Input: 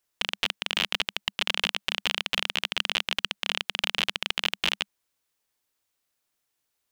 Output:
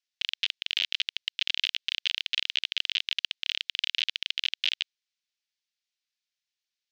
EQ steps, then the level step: dynamic EQ 3600 Hz, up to +4 dB, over -36 dBFS, Q 1.5; Bessel high-pass 2800 Hz, order 8; LPF 5600 Hz 24 dB/oct; -1.0 dB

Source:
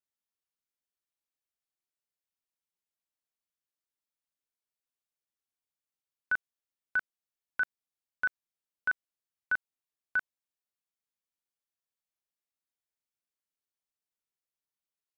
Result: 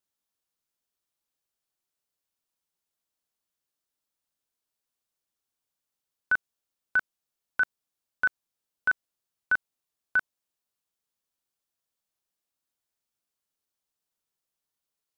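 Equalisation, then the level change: bell 2100 Hz -4 dB; +6.5 dB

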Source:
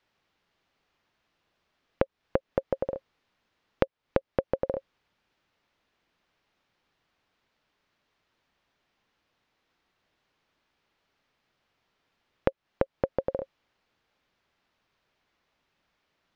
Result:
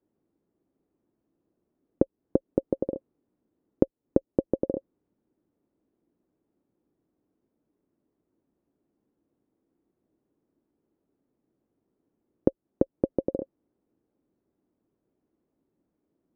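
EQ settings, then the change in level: band-pass 310 Hz, Q 2.5; tilt -3.5 dB/oct; +5.5 dB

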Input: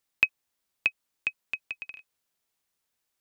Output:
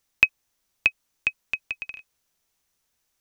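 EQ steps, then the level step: low shelf 82 Hz +10.5 dB; bell 6000 Hz +5.5 dB 0.24 oct; +5.0 dB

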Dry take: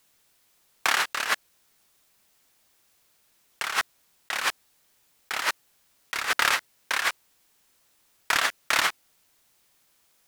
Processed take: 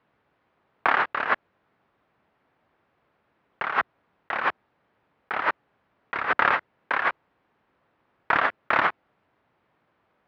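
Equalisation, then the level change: HPF 75 Hz; LPF 1500 Hz 12 dB/oct; air absorption 190 m; +7.5 dB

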